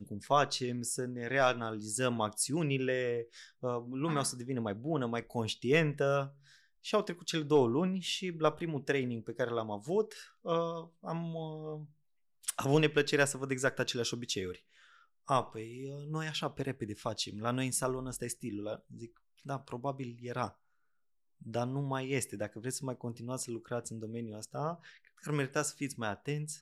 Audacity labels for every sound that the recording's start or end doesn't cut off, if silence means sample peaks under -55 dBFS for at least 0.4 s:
12.430000	20.520000	sound